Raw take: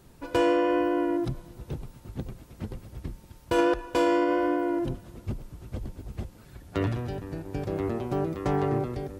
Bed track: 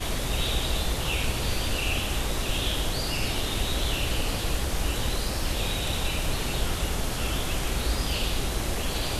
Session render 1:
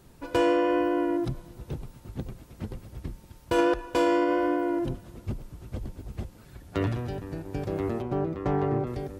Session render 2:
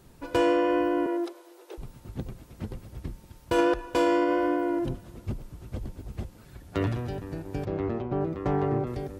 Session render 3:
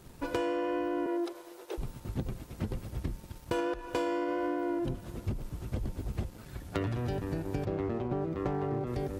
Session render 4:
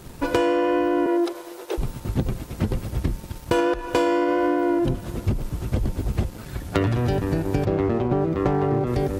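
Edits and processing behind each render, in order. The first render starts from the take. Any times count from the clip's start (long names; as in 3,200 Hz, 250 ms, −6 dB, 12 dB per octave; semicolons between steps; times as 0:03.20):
0:08.02–0:08.87: low-pass filter 2,000 Hz 6 dB per octave
0:01.06–0:01.78: Butterworth high-pass 320 Hz 96 dB per octave; 0:07.65–0:08.21: high-frequency loss of the air 160 metres
downward compressor 12 to 1, threshold −32 dBFS, peak gain reduction 14 dB; leveller curve on the samples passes 1
level +11 dB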